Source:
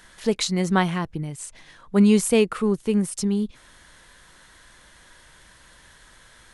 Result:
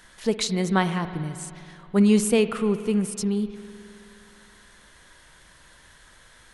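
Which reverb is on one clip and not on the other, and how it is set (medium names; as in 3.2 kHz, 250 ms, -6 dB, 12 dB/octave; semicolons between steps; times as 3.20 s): spring tank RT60 2.7 s, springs 52 ms, chirp 35 ms, DRR 11 dB; trim -1.5 dB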